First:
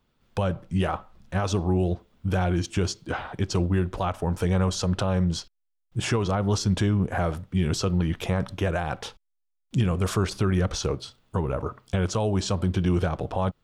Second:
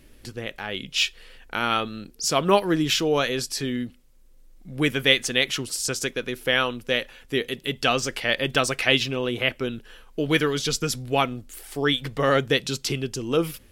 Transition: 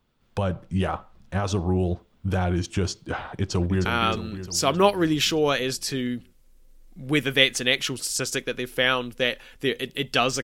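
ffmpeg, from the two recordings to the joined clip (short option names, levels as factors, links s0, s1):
-filter_complex "[0:a]apad=whole_dur=10.43,atrim=end=10.43,atrim=end=3.852[s0];[1:a]atrim=start=1.538:end=8.12[s1];[s0][s1]acrossfade=d=0.004:c1=hsin:c2=hsin,asplit=2[s2][s3];[s3]afade=t=in:st=3.3:d=0.01,afade=t=out:st=3.85:d=0.01,aecho=0:1:310|620|930|1240|1550|1860|2170|2480:0.421697|0.253018|0.151811|0.0910864|0.0546519|0.0327911|0.0196747|0.0118048[s4];[s2][s4]amix=inputs=2:normalize=0"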